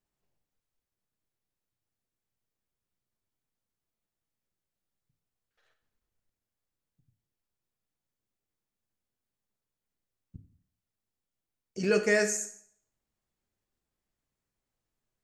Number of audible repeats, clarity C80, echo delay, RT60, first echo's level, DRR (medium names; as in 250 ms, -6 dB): no echo, 14.0 dB, no echo, 0.60 s, no echo, 5.5 dB